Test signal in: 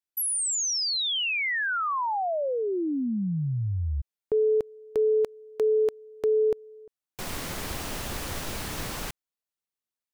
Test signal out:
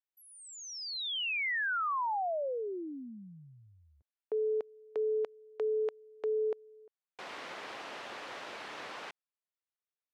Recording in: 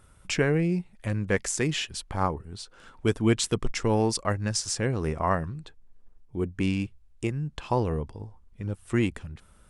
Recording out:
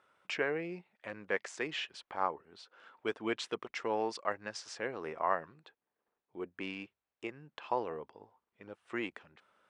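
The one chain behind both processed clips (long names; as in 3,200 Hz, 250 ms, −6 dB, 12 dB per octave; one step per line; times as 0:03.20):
band-pass filter 490–3,100 Hz
level −4.5 dB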